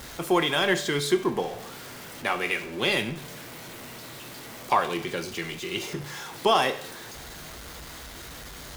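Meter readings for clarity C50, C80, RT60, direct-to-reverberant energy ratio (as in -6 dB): 13.5 dB, 16.0 dB, 0.65 s, 9.0 dB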